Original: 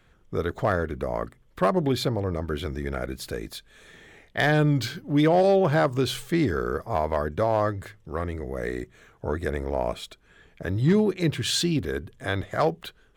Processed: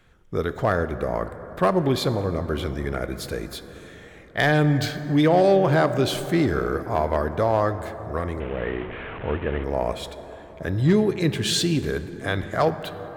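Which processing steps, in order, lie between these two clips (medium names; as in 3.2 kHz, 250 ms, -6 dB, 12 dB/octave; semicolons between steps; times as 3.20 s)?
8.40–9.64 s: one-bit delta coder 16 kbps, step -32 dBFS; plate-style reverb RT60 4.8 s, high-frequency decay 0.3×, DRR 10.5 dB; trim +2 dB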